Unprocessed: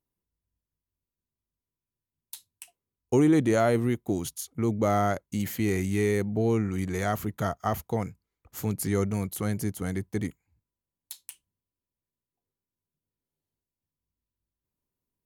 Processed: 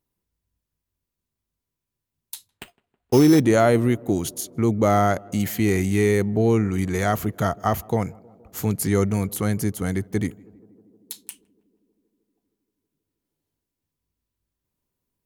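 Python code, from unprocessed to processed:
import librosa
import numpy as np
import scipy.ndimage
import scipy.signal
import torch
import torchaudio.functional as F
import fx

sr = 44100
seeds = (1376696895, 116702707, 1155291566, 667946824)

y = fx.sample_hold(x, sr, seeds[0], rate_hz=5700.0, jitter_pct=0, at=(2.48, 3.39), fade=0.02)
y = fx.echo_tape(y, sr, ms=158, feedback_pct=89, wet_db=-22.5, lp_hz=1000.0, drive_db=16.0, wow_cents=25)
y = F.gain(torch.from_numpy(y), 6.0).numpy()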